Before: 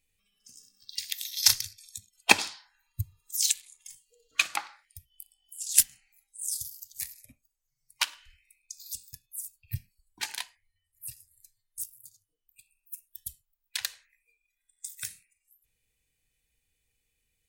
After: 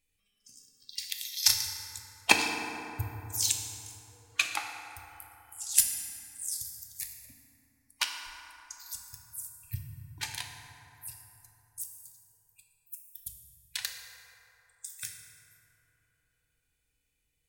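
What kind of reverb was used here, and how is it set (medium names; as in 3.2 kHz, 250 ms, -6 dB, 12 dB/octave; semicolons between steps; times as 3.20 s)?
FDN reverb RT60 3.5 s, high-frequency decay 0.4×, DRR 2.5 dB; trim -3 dB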